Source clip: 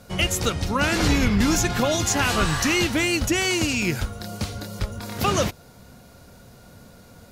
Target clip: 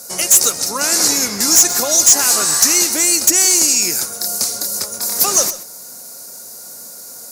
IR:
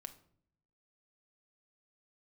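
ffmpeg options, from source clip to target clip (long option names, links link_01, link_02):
-filter_complex "[0:a]highpass=360,highshelf=frequency=3900:gain=-10,asplit=2[link_01][link_02];[link_02]acompressor=threshold=-36dB:ratio=6,volume=-0.5dB[link_03];[link_01][link_03]amix=inputs=2:normalize=0,aexciter=amount=15.7:drive=7.4:freq=4900,volume=4.5dB,asoftclip=hard,volume=-4.5dB,asplit=2[link_04][link_05];[1:a]atrim=start_sample=2205,adelay=130[link_06];[link_05][link_06]afir=irnorm=-1:irlink=0,volume=-9.5dB[link_07];[link_04][link_07]amix=inputs=2:normalize=0"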